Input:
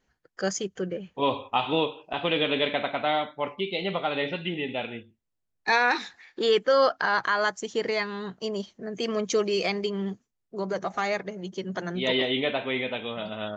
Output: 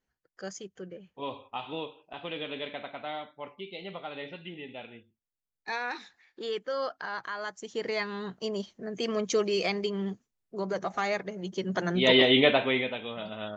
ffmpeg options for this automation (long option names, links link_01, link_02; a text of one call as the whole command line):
ffmpeg -i in.wav -af "volume=6dB,afade=type=in:start_time=7.45:duration=0.7:silence=0.334965,afade=type=in:start_time=11.29:duration=1.15:silence=0.398107,afade=type=out:start_time=12.44:duration=0.51:silence=0.316228" out.wav